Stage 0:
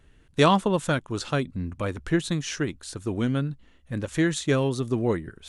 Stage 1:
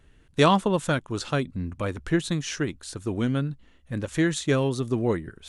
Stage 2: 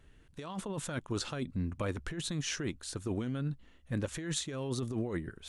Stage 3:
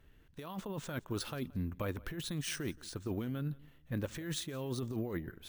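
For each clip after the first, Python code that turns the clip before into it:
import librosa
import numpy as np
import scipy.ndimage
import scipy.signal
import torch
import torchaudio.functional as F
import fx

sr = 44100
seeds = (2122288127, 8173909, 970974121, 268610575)

y1 = x
y2 = fx.over_compress(y1, sr, threshold_db=-28.0, ratio=-1.0)
y2 = y2 * librosa.db_to_amplitude(-7.0)
y3 = fx.echo_feedback(y2, sr, ms=173, feedback_pct=27, wet_db=-23)
y3 = np.repeat(scipy.signal.resample_poly(y3, 1, 3), 3)[:len(y3)]
y3 = y3 * librosa.db_to_amplitude(-2.5)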